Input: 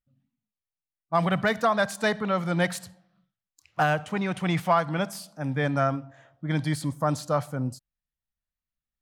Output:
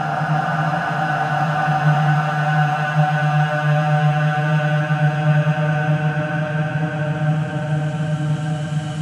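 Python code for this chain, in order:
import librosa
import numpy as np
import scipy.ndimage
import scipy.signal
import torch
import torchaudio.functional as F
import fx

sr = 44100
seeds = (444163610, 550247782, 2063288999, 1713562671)

p1 = scipy.signal.sosfilt(scipy.signal.butter(2, 9800.0, 'lowpass', fs=sr, output='sos'), x)
p2 = fx.low_shelf_res(p1, sr, hz=300.0, db=7.0, q=3.0)
p3 = fx.hum_notches(p2, sr, base_hz=60, count=5)
p4 = fx.over_compress(p3, sr, threshold_db=-25.0, ratio=-0.5)
p5 = p3 + (p4 * 10.0 ** (-2.5 / 20.0))
p6 = fx.paulstretch(p5, sr, seeds[0], factor=37.0, window_s=0.25, from_s=3.79)
y = fx.echo_split(p6, sr, split_hz=450.0, low_ms=460, high_ms=351, feedback_pct=52, wet_db=-13)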